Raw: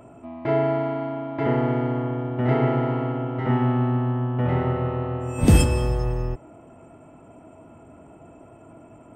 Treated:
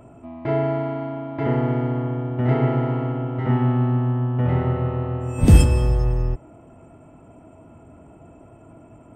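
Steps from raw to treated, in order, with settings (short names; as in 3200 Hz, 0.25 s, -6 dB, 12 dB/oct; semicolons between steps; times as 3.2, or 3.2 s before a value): low shelf 150 Hz +8 dB; gain -1.5 dB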